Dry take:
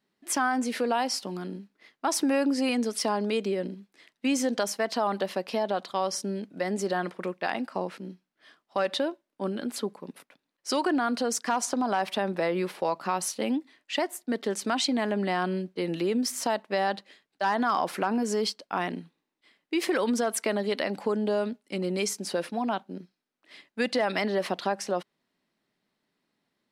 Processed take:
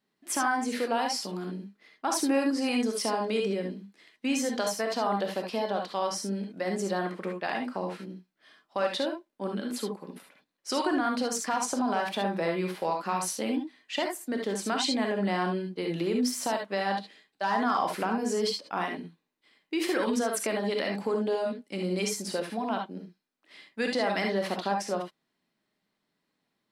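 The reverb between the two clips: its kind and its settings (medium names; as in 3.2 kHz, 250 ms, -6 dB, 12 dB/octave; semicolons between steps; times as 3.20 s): gated-style reverb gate 90 ms rising, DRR 2 dB; trim -3 dB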